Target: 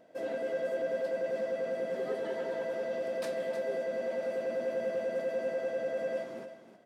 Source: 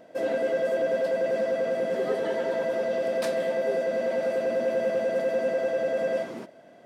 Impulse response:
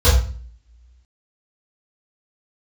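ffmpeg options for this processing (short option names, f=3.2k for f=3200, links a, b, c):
-af "aecho=1:1:312:0.299,volume=-8.5dB"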